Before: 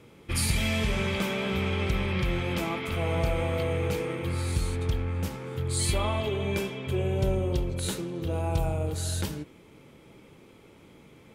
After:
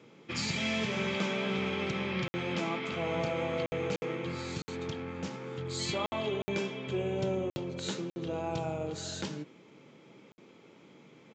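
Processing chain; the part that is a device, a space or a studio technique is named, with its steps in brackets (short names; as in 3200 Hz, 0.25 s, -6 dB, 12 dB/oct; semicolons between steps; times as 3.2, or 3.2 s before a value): call with lost packets (HPF 140 Hz 24 dB/oct; downsampling 16000 Hz; packet loss packets of 60 ms random); gain -2.5 dB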